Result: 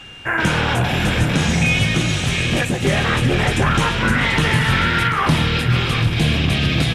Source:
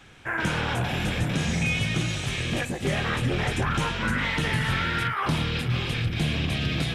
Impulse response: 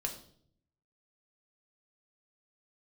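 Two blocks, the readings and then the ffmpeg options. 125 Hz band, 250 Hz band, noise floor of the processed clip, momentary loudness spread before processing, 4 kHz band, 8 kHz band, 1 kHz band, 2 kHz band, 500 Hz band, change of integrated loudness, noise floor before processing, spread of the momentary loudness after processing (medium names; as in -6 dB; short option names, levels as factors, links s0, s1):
+8.5 dB, +9.0 dB, -23 dBFS, 3 LU, +9.0 dB, +9.0 dB, +9.0 dB, +9.0 dB, +9.0 dB, +9.0 dB, -34 dBFS, 3 LU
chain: -af "aeval=exprs='val(0)+0.00501*sin(2*PI*2800*n/s)':c=same,aecho=1:1:737:0.299,volume=2.66"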